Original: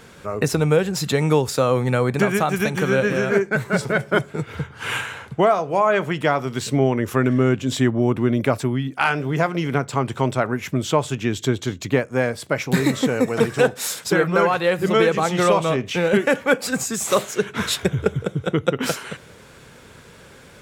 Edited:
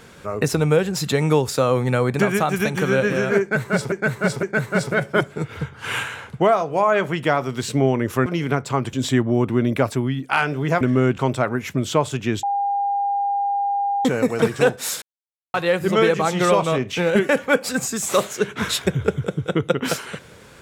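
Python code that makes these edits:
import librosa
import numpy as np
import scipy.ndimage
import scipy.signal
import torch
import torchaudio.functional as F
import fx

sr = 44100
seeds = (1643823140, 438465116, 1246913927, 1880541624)

y = fx.edit(x, sr, fx.repeat(start_s=3.41, length_s=0.51, count=3),
    fx.swap(start_s=7.24, length_s=0.37, other_s=9.49, other_length_s=0.67),
    fx.bleep(start_s=11.41, length_s=1.62, hz=804.0, db=-18.5),
    fx.silence(start_s=14.0, length_s=0.52), tone=tone)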